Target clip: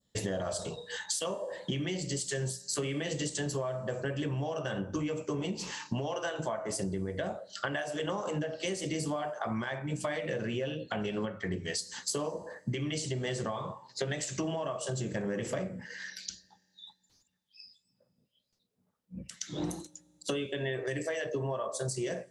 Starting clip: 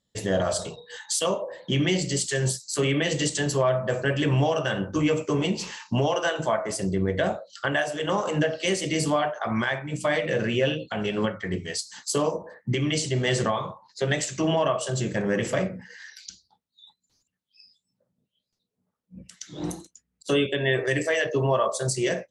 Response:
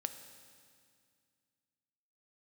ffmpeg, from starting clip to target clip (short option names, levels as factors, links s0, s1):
-filter_complex "[0:a]adynamicequalizer=threshold=0.00891:dfrequency=2300:dqfactor=0.8:tfrequency=2300:tqfactor=0.8:attack=5:release=100:ratio=0.375:range=2.5:mode=cutabove:tftype=bell,acompressor=threshold=0.0251:ratio=10,asplit=2[s0][s1];[1:a]atrim=start_sample=2205[s2];[s1][s2]afir=irnorm=-1:irlink=0,volume=0.224[s3];[s0][s3]amix=inputs=2:normalize=0"